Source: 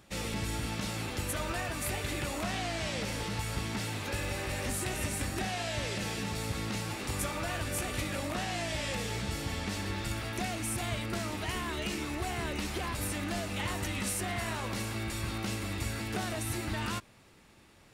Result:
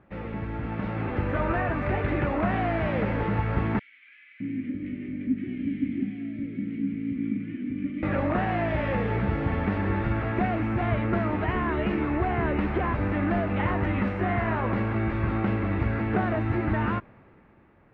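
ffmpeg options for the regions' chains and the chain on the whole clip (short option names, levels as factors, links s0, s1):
-filter_complex "[0:a]asettb=1/sr,asplit=3[s0][s1][s2];[s0]atrim=end=3.794[s3];[s1]atrim=start=3.79:end=8.03,asetpts=PTS-STARTPTS,afade=t=in:d=0.004:c=qsin,afade=t=out:st=4.236:d=0.004:c=qsin,asplit=3[s4][s5][s6];[s4]bandpass=f=270:t=q:w=8,volume=1[s7];[s5]bandpass=f=2290:t=q:w=8,volume=0.501[s8];[s6]bandpass=f=3010:t=q:w=8,volume=0.355[s9];[s7][s8][s9]amix=inputs=3:normalize=0,lowshelf=f=320:t=q:w=1.5:g=8,acrossover=split=1400[s10][s11];[s10]adelay=610[s12];[s12][s11]amix=inputs=2:normalize=0,atrim=end_sample=186984[s13];[s2]atrim=start=8.026[s14];[s3][s13]acrossfade=d=0.004:c1=hsin:c2=qsin[s15];[s15][s14]acrossfade=d=0.004:c1=qsin:c2=hsin,lowpass=f=2000:w=0.5412,lowpass=f=2000:w=1.3066,dynaudnorm=f=110:g=17:m=2.51,equalizer=f=260:w=0.39:g=3"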